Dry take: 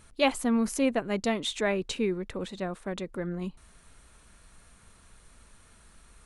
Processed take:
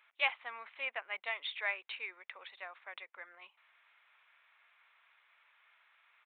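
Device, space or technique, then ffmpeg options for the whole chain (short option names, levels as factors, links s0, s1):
musical greeting card: -af "aresample=8000,aresample=44100,highpass=f=790:w=0.5412,highpass=f=790:w=1.3066,equalizer=f=2200:t=o:w=0.57:g=9.5,volume=0.422"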